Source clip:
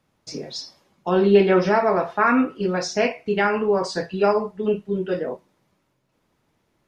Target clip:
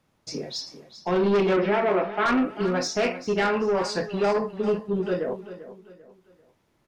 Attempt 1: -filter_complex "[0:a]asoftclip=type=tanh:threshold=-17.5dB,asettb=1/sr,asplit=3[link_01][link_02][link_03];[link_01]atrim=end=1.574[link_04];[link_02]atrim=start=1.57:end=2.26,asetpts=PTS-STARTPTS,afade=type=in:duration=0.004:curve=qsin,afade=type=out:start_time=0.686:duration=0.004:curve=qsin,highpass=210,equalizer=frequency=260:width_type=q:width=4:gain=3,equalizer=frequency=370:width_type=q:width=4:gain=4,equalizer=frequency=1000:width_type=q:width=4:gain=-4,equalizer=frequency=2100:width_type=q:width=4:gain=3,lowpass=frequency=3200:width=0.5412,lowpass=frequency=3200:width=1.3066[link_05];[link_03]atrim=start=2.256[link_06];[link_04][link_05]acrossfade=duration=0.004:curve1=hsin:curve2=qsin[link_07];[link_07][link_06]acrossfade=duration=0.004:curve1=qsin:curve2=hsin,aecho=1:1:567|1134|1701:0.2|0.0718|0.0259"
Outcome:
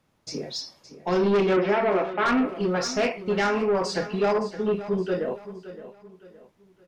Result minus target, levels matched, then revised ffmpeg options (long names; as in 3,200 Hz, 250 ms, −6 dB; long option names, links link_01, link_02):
echo 174 ms late
-filter_complex "[0:a]asoftclip=type=tanh:threshold=-17.5dB,asettb=1/sr,asplit=3[link_01][link_02][link_03];[link_01]atrim=end=1.574[link_04];[link_02]atrim=start=1.57:end=2.26,asetpts=PTS-STARTPTS,afade=type=in:duration=0.004:curve=qsin,afade=type=out:start_time=0.686:duration=0.004:curve=qsin,highpass=210,equalizer=frequency=260:width_type=q:width=4:gain=3,equalizer=frequency=370:width_type=q:width=4:gain=4,equalizer=frequency=1000:width_type=q:width=4:gain=-4,equalizer=frequency=2100:width_type=q:width=4:gain=3,lowpass=frequency=3200:width=0.5412,lowpass=frequency=3200:width=1.3066[link_05];[link_03]atrim=start=2.256[link_06];[link_04][link_05]acrossfade=duration=0.004:curve1=hsin:curve2=qsin[link_07];[link_07][link_06]acrossfade=duration=0.004:curve1=qsin:curve2=hsin,aecho=1:1:393|786|1179:0.2|0.0718|0.0259"